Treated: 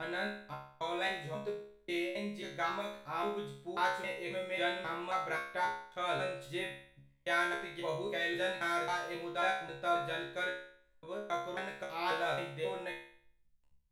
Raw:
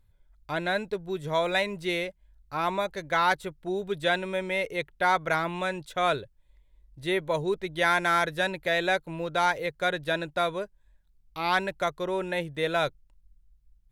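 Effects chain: slices in reverse order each 0.269 s, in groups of 3; resonator 69 Hz, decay 0.58 s, harmonics all, mix 100%; gain +2.5 dB

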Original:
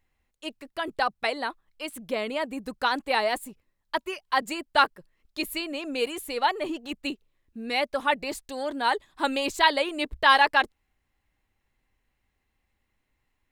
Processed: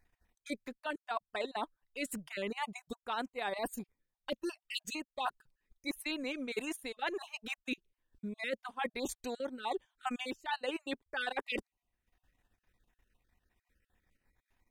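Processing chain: random spectral dropouts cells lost 27%; reverse; compressor 12:1, threshold -35 dBFS, peak gain reduction 20 dB; reverse; transient shaper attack +1 dB, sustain -11 dB; speed mistake 48 kHz file played as 44.1 kHz; gain +1 dB

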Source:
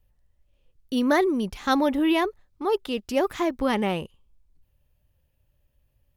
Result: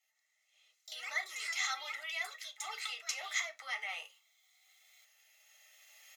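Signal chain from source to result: recorder AGC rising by 10 dB/s; high shelf 2200 Hz -10.5 dB; compressor 2.5:1, threshold -30 dBFS, peak gain reduction 9 dB; bell 6500 Hz +12.5 dB 1.4 oct; limiter -27 dBFS, peak gain reduction 9.5 dB; Bessel high-pass 1700 Hz, order 4; echoes that change speed 0.149 s, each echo +4 st, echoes 2, each echo -6 dB; notch 4500 Hz, Q 13; comb 1.5 ms, depth 78%; reverb RT60 0.20 s, pre-delay 3 ms, DRR 4 dB

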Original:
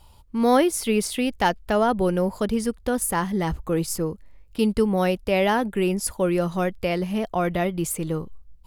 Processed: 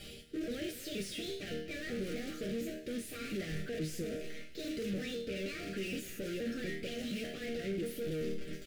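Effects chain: trilling pitch shifter +5.5 st, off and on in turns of 0.237 s; low shelf 150 Hz +3.5 dB; reverse; compressor 6:1, threshold -37 dBFS, peak gain reduction 21.5 dB; reverse; short-mantissa float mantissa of 2-bit; harmonic-percussive split percussive +6 dB; resonator bank D#3 major, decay 0.33 s; rotary speaker horn 0.8 Hz; overdrive pedal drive 36 dB, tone 1400 Hz, clips at -38 dBFS; Butterworth band-stop 950 Hz, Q 0.63; on a send: echo 0.247 s -16.5 dB; on the sum: gain +11 dB

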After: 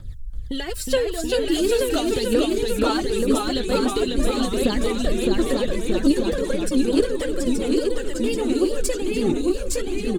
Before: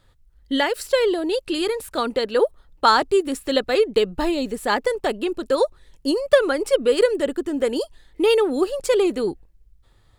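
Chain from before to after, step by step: tone controls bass +12 dB, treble +7 dB; compressor 6:1, threshold -29 dBFS, peak gain reduction 19 dB; rotary speaker horn 5 Hz, later 0.7 Hz, at 5.01; phaser 0.43 Hz, delay 4.6 ms, feedback 68%; on a send: echo 0.878 s -4.5 dB; on the sum: echoes that change speed 0.334 s, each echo -1 st, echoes 3; gain +5 dB

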